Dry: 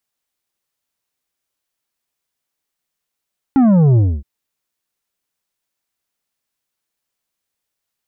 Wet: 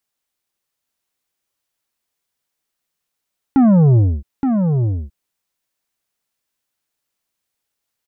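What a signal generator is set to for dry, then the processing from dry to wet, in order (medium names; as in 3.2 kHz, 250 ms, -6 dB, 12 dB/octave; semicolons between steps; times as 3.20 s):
sub drop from 280 Hz, over 0.67 s, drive 8 dB, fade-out 0.26 s, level -9 dB
delay 871 ms -5.5 dB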